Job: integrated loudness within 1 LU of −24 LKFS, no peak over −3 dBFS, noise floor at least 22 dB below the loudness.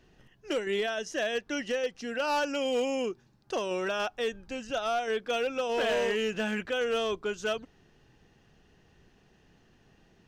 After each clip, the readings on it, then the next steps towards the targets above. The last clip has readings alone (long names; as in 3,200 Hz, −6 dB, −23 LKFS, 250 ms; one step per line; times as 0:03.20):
share of clipped samples 1.4%; peaks flattened at −23.5 dBFS; integrated loudness −31.0 LKFS; sample peak −23.5 dBFS; target loudness −24.0 LKFS
→ clipped peaks rebuilt −23.5 dBFS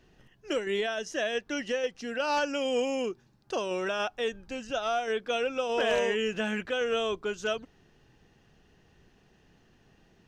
share of clipped samples 0.0%; integrated loudness −30.5 LKFS; sample peak −14.5 dBFS; target loudness −24.0 LKFS
→ level +6.5 dB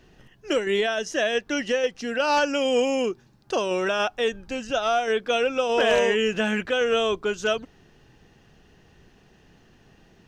integrated loudness −24.0 LKFS; sample peak −8.0 dBFS; background noise floor −57 dBFS